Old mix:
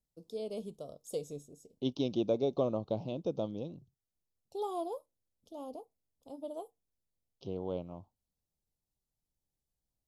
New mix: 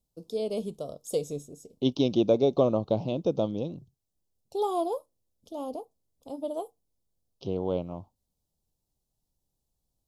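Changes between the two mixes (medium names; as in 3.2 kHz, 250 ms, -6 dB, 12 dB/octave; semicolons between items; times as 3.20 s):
first voice +8.5 dB; second voice +8.0 dB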